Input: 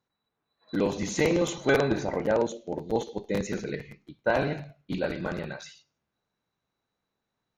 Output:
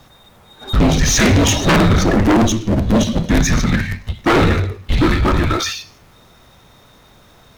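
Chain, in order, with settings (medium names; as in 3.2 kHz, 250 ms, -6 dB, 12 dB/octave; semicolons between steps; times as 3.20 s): power-law waveshaper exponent 0.7; frequency shift -240 Hz; sine folder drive 11 dB, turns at -8 dBFS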